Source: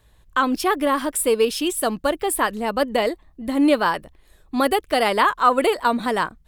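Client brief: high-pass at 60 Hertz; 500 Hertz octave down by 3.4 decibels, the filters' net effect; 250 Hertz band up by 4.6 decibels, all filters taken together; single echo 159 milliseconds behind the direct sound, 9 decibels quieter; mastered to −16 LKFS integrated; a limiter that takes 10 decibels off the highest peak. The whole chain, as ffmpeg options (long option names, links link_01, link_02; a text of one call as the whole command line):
ffmpeg -i in.wav -af "highpass=60,equalizer=frequency=250:width_type=o:gain=7,equalizer=frequency=500:width_type=o:gain=-6,alimiter=limit=-16dB:level=0:latency=1,aecho=1:1:159:0.355,volume=9dB" out.wav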